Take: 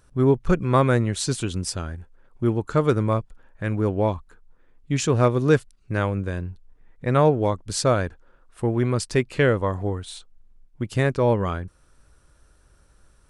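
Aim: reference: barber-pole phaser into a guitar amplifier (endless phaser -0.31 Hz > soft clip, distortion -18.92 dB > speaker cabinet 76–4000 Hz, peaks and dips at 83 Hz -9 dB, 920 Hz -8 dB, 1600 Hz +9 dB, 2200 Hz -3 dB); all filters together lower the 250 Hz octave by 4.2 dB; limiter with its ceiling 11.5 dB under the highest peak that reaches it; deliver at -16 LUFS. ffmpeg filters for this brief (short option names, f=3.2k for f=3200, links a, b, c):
-filter_complex "[0:a]equalizer=f=250:t=o:g=-5.5,alimiter=limit=-18.5dB:level=0:latency=1,asplit=2[a][b];[b]afreqshift=-0.31[c];[a][c]amix=inputs=2:normalize=1,asoftclip=threshold=-23.5dB,highpass=76,equalizer=f=83:t=q:w=4:g=-9,equalizer=f=920:t=q:w=4:g=-8,equalizer=f=1.6k:t=q:w=4:g=9,equalizer=f=2.2k:t=q:w=4:g=-3,lowpass=f=4k:w=0.5412,lowpass=f=4k:w=1.3066,volume=19.5dB"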